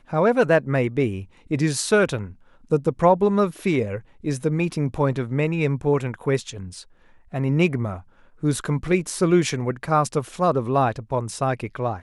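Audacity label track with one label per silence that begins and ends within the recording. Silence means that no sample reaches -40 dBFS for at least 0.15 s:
1.250000	1.460000	silence
2.330000	2.710000	silence
4.010000	4.230000	silence
6.830000	7.330000	silence
8.010000	8.420000	silence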